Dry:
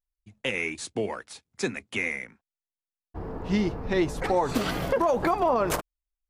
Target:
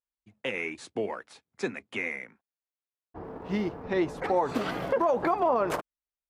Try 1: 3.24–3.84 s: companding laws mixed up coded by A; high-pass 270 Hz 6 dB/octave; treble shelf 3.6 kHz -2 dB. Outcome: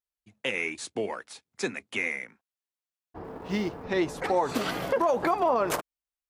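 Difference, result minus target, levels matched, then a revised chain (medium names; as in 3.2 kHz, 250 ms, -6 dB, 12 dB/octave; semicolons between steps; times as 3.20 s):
8 kHz band +8.5 dB
3.24–3.84 s: companding laws mixed up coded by A; high-pass 270 Hz 6 dB/octave; treble shelf 3.6 kHz -13.5 dB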